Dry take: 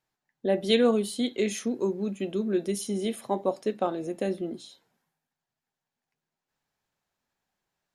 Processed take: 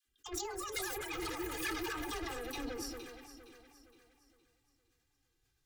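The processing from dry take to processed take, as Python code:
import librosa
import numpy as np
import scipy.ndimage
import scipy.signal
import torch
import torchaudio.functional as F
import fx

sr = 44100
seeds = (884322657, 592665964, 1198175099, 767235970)

y = fx.speed_glide(x, sr, from_pct=188, to_pct=93)
y = fx.echo_pitch(y, sr, ms=315, semitones=6, count=3, db_per_echo=-3.0)
y = fx.dispersion(y, sr, late='lows', ms=67.0, hz=590.0)
y = fx.over_compress(y, sr, threshold_db=-29.0, ratio=-0.5)
y = fx.low_shelf(y, sr, hz=480.0, db=6.0)
y = 10.0 ** (-29.0 / 20.0) * np.tanh(y / 10.0 ** (-29.0 / 20.0))
y = fx.tone_stack(y, sr, knobs='6-0-2')
y = fx.echo_alternate(y, sr, ms=232, hz=1800.0, feedback_pct=64, wet_db=-8.0)
y = fx.env_flanger(y, sr, rest_ms=2.5, full_db=-14.0)
y = fx.sustainer(y, sr, db_per_s=32.0)
y = y * 10.0 ** (17.0 / 20.0)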